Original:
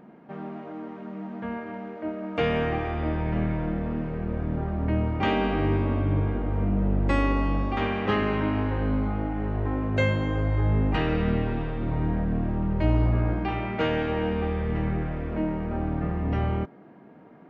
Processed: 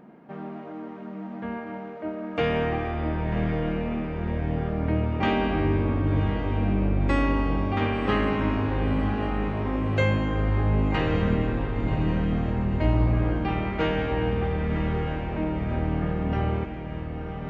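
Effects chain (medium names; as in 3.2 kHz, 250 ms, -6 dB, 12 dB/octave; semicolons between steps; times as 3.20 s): echo that smears into a reverb 1092 ms, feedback 62%, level -8.5 dB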